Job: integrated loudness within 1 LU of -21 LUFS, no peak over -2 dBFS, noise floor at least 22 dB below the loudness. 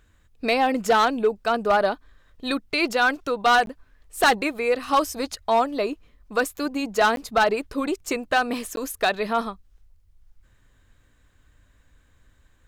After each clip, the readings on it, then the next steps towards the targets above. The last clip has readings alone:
clipped samples 0.6%; clipping level -12.5 dBFS; dropouts 3; longest dropout 12 ms; loudness -23.0 LUFS; peak level -12.5 dBFS; loudness target -21.0 LUFS
-> clip repair -12.5 dBFS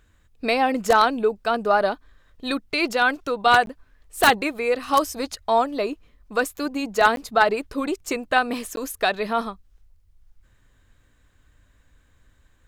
clipped samples 0.0%; dropouts 3; longest dropout 12 ms
-> interpolate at 3.66/7.16/8.76 s, 12 ms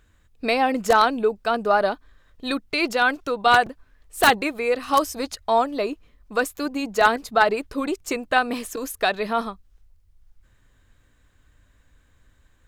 dropouts 0; loudness -22.0 LUFS; peak level -3.5 dBFS; loudness target -21.0 LUFS
-> trim +1 dB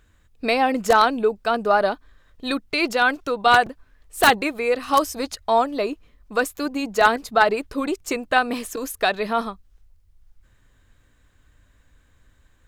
loudness -21.0 LUFS; peak level -2.5 dBFS; noise floor -59 dBFS

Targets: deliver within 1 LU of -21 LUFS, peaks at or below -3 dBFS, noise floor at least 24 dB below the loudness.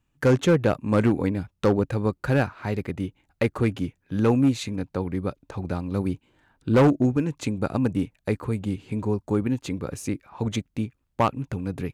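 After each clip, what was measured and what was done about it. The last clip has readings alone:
clipped samples 1.0%; clipping level -13.0 dBFS; loudness -25.5 LUFS; peak level -13.0 dBFS; loudness target -21.0 LUFS
-> clip repair -13 dBFS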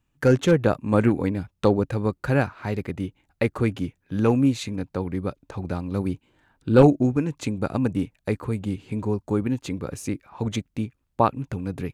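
clipped samples 0.0%; loudness -24.5 LUFS; peak level -4.0 dBFS; loudness target -21.0 LUFS
-> trim +3.5 dB; peak limiter -3 dBFS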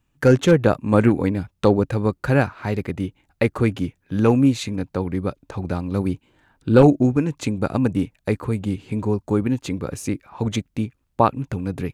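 loudness -21.5 LUFS; peak level -3.0 dBFS; noise floor -69 dBFS

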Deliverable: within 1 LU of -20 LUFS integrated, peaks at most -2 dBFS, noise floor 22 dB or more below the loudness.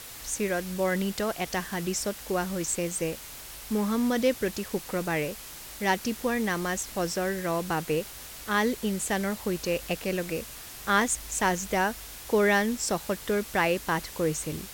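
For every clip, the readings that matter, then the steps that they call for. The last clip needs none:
noise floor -43 dBFS; noise floor target -51 dBFS; loudness -28.5 LUFS; peak level -10.5 dBFS; loudness target -20.0 LUFS
-> noise reduction 8 dB, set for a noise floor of -43 dBFS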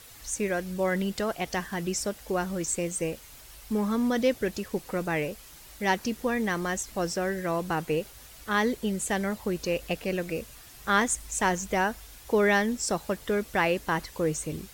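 noise floor -49 dBFS; noise floor target -51 dBFS
-> noise reduction 6 dB, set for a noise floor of -49 dBFS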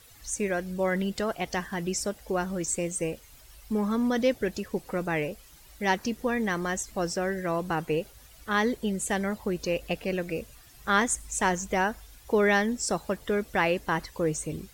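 noise floor -53 dBFS; loudness -28.5 LUFS; peak level -11.0 dBFS; loudness target -20.0 LUFS
-> trim +8.5 dB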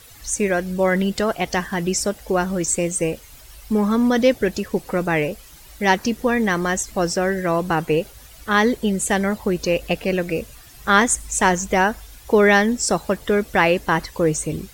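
loudness -20.0 LUFS; peak level -2.5 dBFS; noise floor -45 dBFS

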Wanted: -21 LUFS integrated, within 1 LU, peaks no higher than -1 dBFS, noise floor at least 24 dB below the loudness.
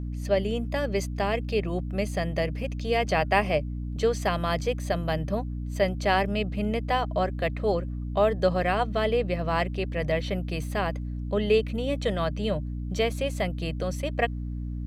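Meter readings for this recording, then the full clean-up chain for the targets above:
hum 60 Hz; highest harmonic 300 Hz; hum level -30 dBFS; loudness -27.5 LUFS; peak level -8.5 dBFS; loudness target -21.0 LUFS
-> de-hum 60 Hz, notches 5; trim +6.5 dB

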